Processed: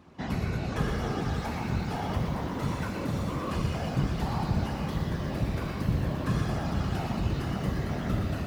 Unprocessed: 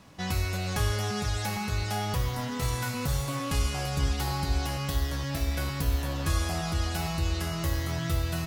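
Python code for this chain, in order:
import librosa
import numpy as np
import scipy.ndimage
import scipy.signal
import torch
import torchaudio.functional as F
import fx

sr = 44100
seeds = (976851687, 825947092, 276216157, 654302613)

p1 = fx.lowpass(x, sr, hz=1500.0, slope=6)
p2 = fx.whisperise(p1, sr, seeds[0])
p3 = scipy.signal.sosfilt(scipy.signal.butter(2, 47.0, 'highpass', fs=sr, output='sos'), p2)
p4 = p3 + fx.echo_single(p3, sr, ms=119, db=-8.0, dry=0)
y = fx.echo_crushed(p4, sr, ms=575, feedback_pct=55, bits=8, wet_db=-12)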